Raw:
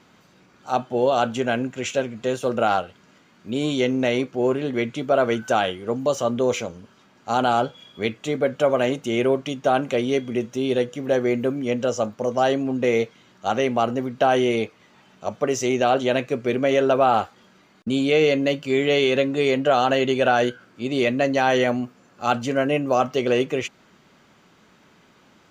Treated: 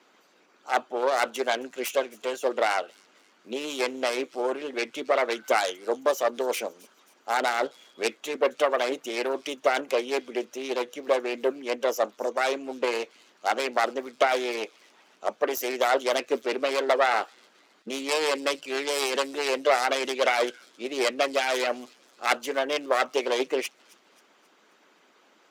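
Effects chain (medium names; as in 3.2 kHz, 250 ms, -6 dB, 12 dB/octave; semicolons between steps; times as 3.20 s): self-modulated delay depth 0.26 ms; high-pass 290 Hz 24 dB/octave; harmonic-percussive split harmonic -10 dB; feedback echo behind a high-pass 267 ms, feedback 47%, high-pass 4.4 kHz, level -18.5 dB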